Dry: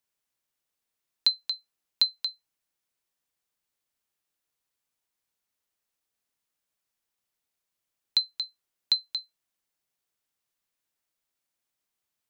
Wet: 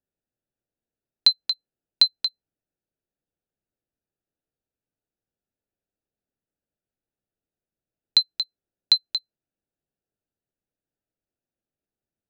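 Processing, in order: Wiener smoothing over 41 samples; gain +6.5 dB

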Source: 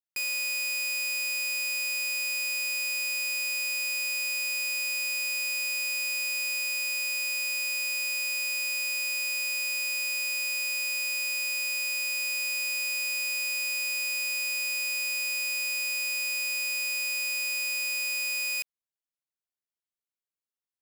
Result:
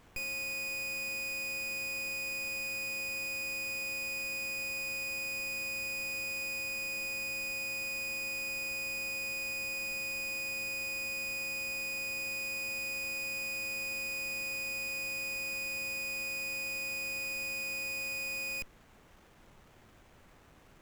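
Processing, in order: tilt shelf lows +10 dB, about 860 Hz; added noise pink -58 dBFS; running maximum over 9 samples

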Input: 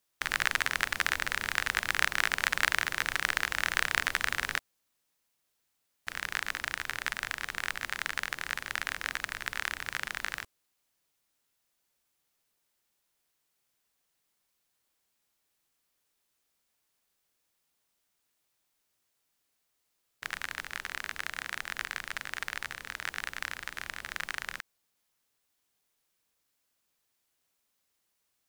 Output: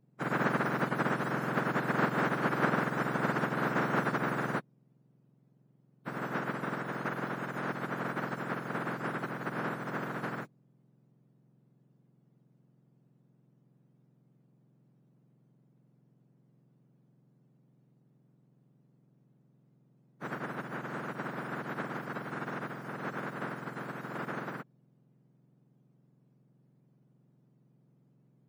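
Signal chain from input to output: spectrum mirrored in octaves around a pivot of 1600 Hz

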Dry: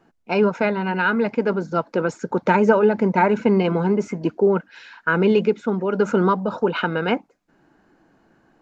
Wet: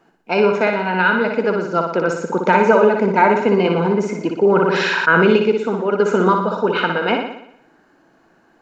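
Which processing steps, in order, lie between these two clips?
low shelf 210 Hz -9.5 dB; on a send: flutter echo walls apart 10.2 m, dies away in 0.72 s; 4.42–5.36 on the sum: fast leveller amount 70%; gain +4 dB

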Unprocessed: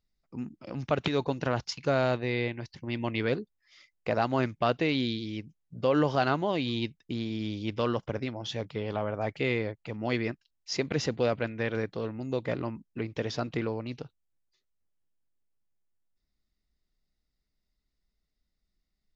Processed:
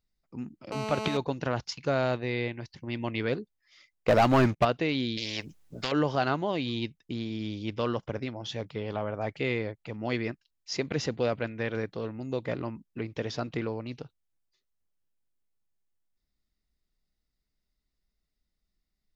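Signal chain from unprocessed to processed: 0.72–1.17 GSM buzz -33 dBFS; 4.08–4.65 sample leveller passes 3; 5.17–5.92 spectral compressor 4:1; gain -1 dB

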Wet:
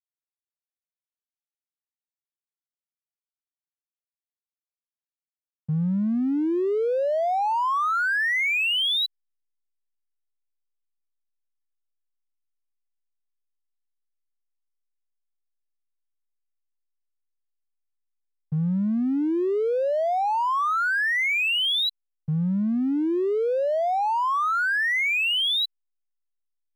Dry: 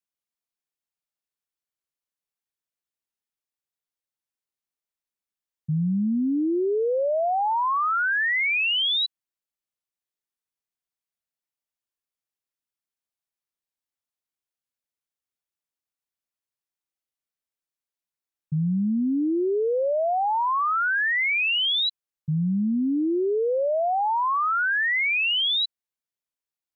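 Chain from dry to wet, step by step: backlash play -36.5 dBFS

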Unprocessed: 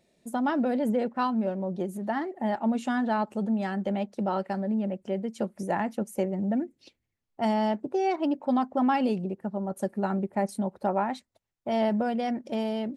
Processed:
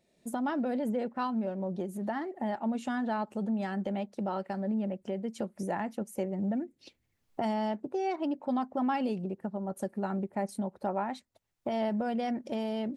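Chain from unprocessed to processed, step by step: recorder AGC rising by 22 dB/s; gain -5.5 dB

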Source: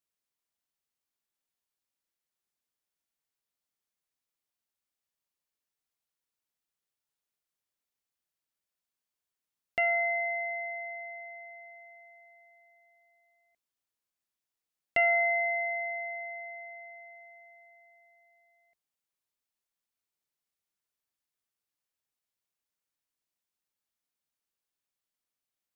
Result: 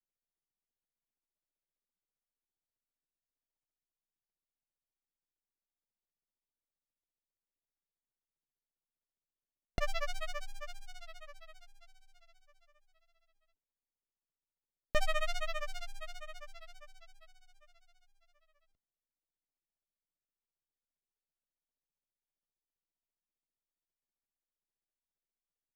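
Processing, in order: spectral noise reduction 10 dB; grains 70 ms, grains 15/s, spray 22 ms, pitch spread up and down by 3 st; running maximum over 33 samples; gain +2.5 dB

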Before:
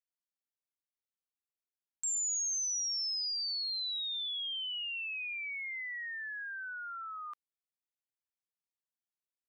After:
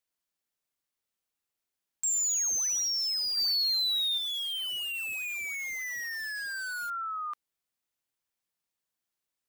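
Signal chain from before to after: 3.37–4.18 tilt shelf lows -4 dB, about 1400 Hz; in parallel at -7 dB: wrapped overs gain 39 dB; on the sum: gain +4.5 dB

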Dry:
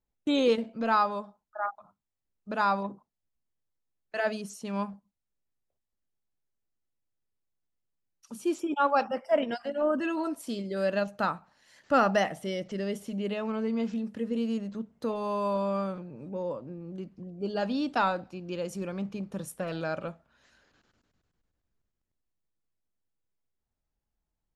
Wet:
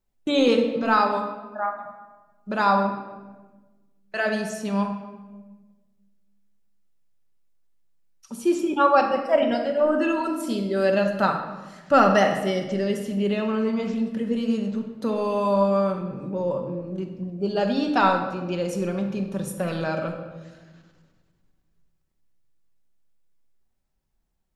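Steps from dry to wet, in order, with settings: shoebox room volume 900 m³, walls mixed, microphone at 1.1 m; gain +5 dB

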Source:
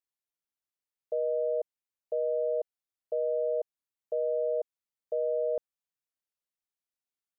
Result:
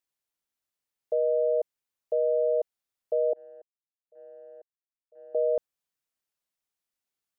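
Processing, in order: 3.33–5.35 gate -25 dBFS, range -32 dB; gain +4.5 dB

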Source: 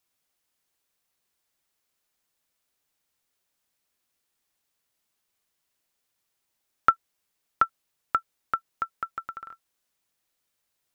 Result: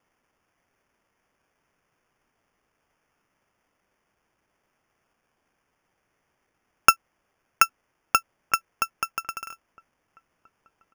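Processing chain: sample-and-hold 11×; outdoor echo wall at 280 m, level -27 dB; gain +4 dB

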